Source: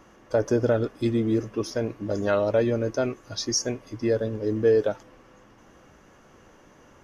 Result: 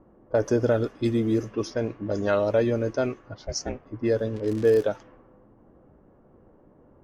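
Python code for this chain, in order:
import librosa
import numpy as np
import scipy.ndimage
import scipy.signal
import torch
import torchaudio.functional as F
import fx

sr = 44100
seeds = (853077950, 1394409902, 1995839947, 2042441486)

y = fx.high_shelf(x, sr, hz=8400.0, db=7.0, at=(0.7, 1.77))
y = fx.ring_mod(y, sr, carrier_hz=fx.line((3.34, 420.0), (3.84, 110.0)), at=(3.34, 3.84), fade=0.02)
y = fx.dmg_crackle(y, sr, seeds[0], per_s=140.0, level_db=-28.0, at=(4.34, 4.82), fade=0.02)
y = fx.env_lowpass(y, sr, base_hz=580.0, full_db=-20.5)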